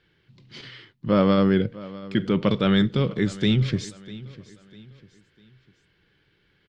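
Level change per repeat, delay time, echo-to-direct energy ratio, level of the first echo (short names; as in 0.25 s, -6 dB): -8.5 dB, 0.649 s, -18.0 dB, -18.5 dB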